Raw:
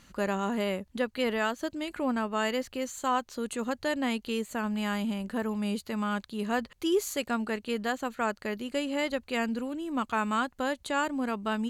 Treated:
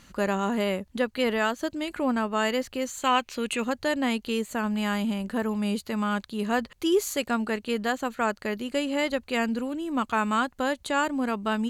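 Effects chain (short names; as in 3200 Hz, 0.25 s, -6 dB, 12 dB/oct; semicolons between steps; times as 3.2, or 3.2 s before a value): 3.02–3.65 bell 2500 Hz +14 dB 0.67 oct; gain +3.5 dB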